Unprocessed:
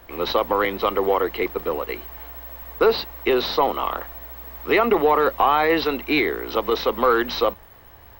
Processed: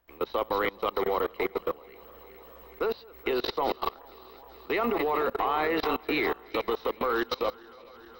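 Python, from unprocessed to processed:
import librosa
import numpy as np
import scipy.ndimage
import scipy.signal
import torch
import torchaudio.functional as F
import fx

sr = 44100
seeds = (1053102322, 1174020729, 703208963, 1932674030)

y = fx.reverse_delay_fb(x, sr, ms=212, feedback_pct=79, wet_db=-10.5)
y = fx.level_steps(y, sr, step_db=23)
y = y * 10.0 ** (-3.5 / 20.0)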